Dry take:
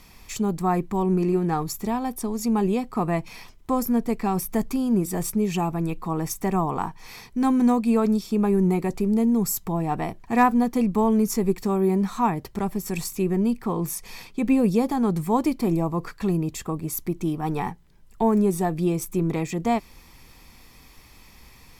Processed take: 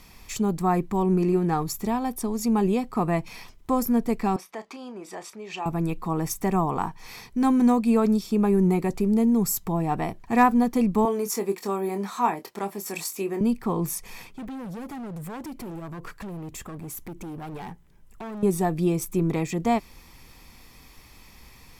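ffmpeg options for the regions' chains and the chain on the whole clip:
-filter_complex "[0:a]asettb=1/sr,asplit=3[s0][s1][s2];[s0]atrim=end=4.364[s3];[s1]atrim=start=4.36:end=5.66,asetpts=PTS-STARTPTS,afade=t=in:d=0.004:c=qsin,afade=t=out:st=1.296:d=0.004:c=qsin,acompressor=threshold=0.0562:ratio=2:attack=3.2:release=140:knee=1:detection=peak,highpass=580,lowpass=4300,asplit=2[s4][s5];[s5]adelay=32,volume=0.224[s6];[s4][s6]amix=inputs=2:normalize=0,atrim=end_sample=57330[s7];[s2]atrim=start=5.656[s8];[s3][s7]acrossfade=d=0.004:c1=hsin:c2=qsin[s9];[s9][s8]acrossfade=d=0.004:c1=qsin:c2=hsin,asettb=1/sr,asplit=3[s10][s11][s12];[s10]atrim=end=11.054[s13];[s11]atrim=start=11.05:end=13.41,asetpts=PTS-STARTPTS,afade=t=in:d=0.004:c=qsin,afade=t=out:st=2.356:d=0.004:c=qsin,highpass=370,asplit=2[s14][s15];[s15]adelay=25,volume=0.376[s16];[s14][s16]amix=inputs=2:normalize=0,atrim=end_sample=104076[s17];[s12]atrim=start=13.406[s18];[s13][s17]acrossfade=d=0.004:c1=hsin:c2=qsin[s19];[s19][s18]acrossfade=d=0.004:c1=qsin:c2=hsin,asettb=1/sr,asplit=3[s20][s21][s22];[s20]atrim=end=14.024[s23];[s21]atrim=start=14.02:end=18.43,asetpts=PTS-STARTPTS,afade=t=in:d=0.004:c=qsin,afade=t=out:st=4.406:d=0.004:c=qsin,acompressor=threshold=0.0282:ratio=2.5:attack=3.2:release=140:knee=1:detection=peak,equalizer=f=4400:t=o:w=0.69:g=-6,asoftclip=type=hard:threshold=0.0211[s24];[s22]atrim=start=18.426[s25];[s23][s24]acrossfade=d=0.004:c1=hsin:c2=qsin[s26];[s26][s25]acrossfade=d=0.004:c1=qsin:c2=hsin"

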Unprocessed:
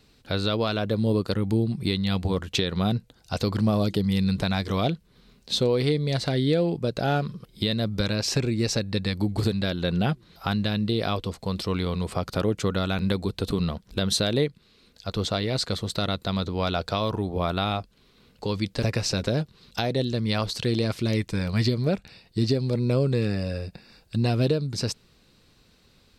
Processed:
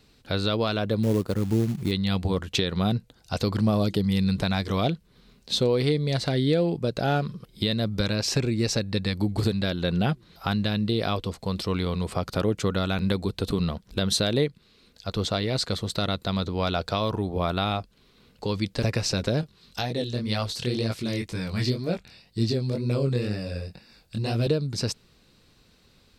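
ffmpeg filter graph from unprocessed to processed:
-filter_complex "[0:a]asettb=1/sr,asplit=3[s0][s1][s2];[s0]atrim=end=1.034[s3];[s1]atrim=start=1.03:end=1.92,asetpts=PTS-STARTPTS,afade=t=in:d=0.004:c=qsin,afade=t=out:st=0.886:d=0.004:c=qsin,equalizer=f=4100:w=0.48:g=-10,acrusher=bits=5:mode=log:mix=0:aa=0.000001[s4];[s2]atrim=start=1.916[s5];[s3][s4]acrossfade=d=0.004:c1=hsin:c2=qsin[s6];[s6][s5]acrossfade=d=0.004:c1=qsin:c2=hsin,asettb=1/sr,asplit=3[s7][s8][s9];[s7]atrim=end=19.414[s10];[s8]atrim=start=19.41:end=24.47,asetpts=PTS-STARTPTS,afade=t=in:d=0.004:c=qsin,afade=t=out:st=5.056:d=0.004:c=qsin,highshelf=f=3800:g=4,flanger=delay=17:depth=7.5:speed=2[s11];[s9]atrim=start=24.466[s12];[s10][s11]acrossfade=d=0.004:c1=hsin:c2=qsin[s13];[s13][s12]acrossfade=d=0.004:c1=qsin:c2=hsin"

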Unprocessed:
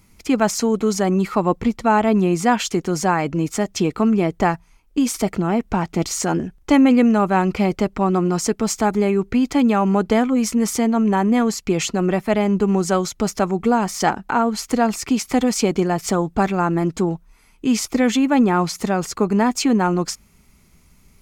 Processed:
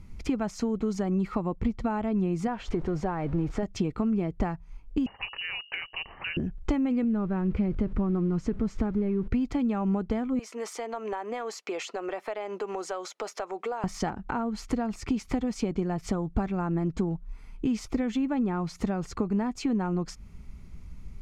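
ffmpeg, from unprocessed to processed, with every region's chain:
-filter_complex "[0:a]asettb=1/sr,asplit=3[s0][s1][s2];[s0]atrim=end=2.474[s3];[s1]atrim=start=2.47:end=3.63,asetpts=PTS-STARTPTS,afade=t=in:d=0.004:c=qsin,afade=t=out:st=1.156:d=0.004:c=qsin,aeval=exprs='val(0)+0.5*0.0355*sgn(val(0))':c=same,lowpass=f=1500:p=1,equalizer=f=210:w=2.2:g=-8[s4];[s2]atrim=start=3.626[s5];[s3][s4]acrossfade=d=0.004:c1=hsin:c2=qsin[s6];[s6][s5]acrossfade=d=0.004:c1=qsin:c2=hsin,asettb=1/sr,asplit=3[s7][s8][s9];[s7]atrim=end=5.064[s10];[s8]atrim=start=5.06:end=6.37,asetpts=PTS-STARTPTS,afade=t=in:d=0.004:c=qsin,afade=t=out:st=1.306:d=0.004:c=qsin,aemphasis=mode=production:type=bsi,bandreject=f=50:t=h:w=6,bandreject=f=100:t=h:w=6,bandreject=f=150:t=h:w=6,bandreject=f=200:t=h:w=6,bandreject=f=250:t=h:w=6,bandreject=f=300:t=h:w=6,bandreject=f=350:t=h:w=6,bandreject=f=400:t=h:w=6,lowpass=f=2600:t=q:w=0.5098,lowpass=f=2600:t=q:w=0.6013,lowpass=f=2600:t=q:w=0.9,lowpass=f=2600:t=q:w=2.563,afreqshift=-3100[s11];[s9]atrim=start=6.366[s12];[s10][s11]acrossfade=d=0.004:c1=hsin:c2=qsin[s13];[s13][s12]acrossfade=d=0.004:c1=qsin:c2=hsin,asettb=1/sr,asplit=3[s14][s15][s16];[s14]atrim=end=7.044[s17];[s15]atrim=start=7.04:end=9.28,asetpts=PTS-STARTPTS,afade=t=in:d=0.004:c=qsin,afade=t=out:st=2.236:d=0.004:c=qsin,aeval=exprs='val(0)+0.5*0.0316*sgn(val(0))':c=same,lowpass=f=1200:p=1,equalizer=f=760:t=o:w=0.82:g=-8[s18];[s16]atrim=start=9.276[s19];[s17][s18]acrossfade=d=0.004:c1=hsin:c2=qsin[s20];[s20][s19]acrossfade=d=0.004:c1=qsin:c2=hsin,asettb=1/sr,asplit=3[s21][s22][s23];[s21]atrim=end=10.394[s24];[s22]atrim=start=10.39:end=13.84,asetpts=PTS-STARTPTS,afade=t=in:d=0.004:c=qsin,afade=t=out:st=3.446:d=0.004:c=qsin,highpass=f=470:w=0.5412,highpass=f=470:w=1.3066,acompressor=threshold=0.0355:ratio=2:attack=3.2:release=140:knee=1:detection=peak[s25];[s23]atrim=start=13.836[s26];[s24][s25]acrossfade=d=0.004:c1=hsin:c2=qsin[s27];[s27][s26]acrossfade=d=0.004:c1=qsin:c2=hsin,acompressor=threshold=0.0398:ratio=5,aemphasis=mode=reproduction:type=bsi,volume=0.794"

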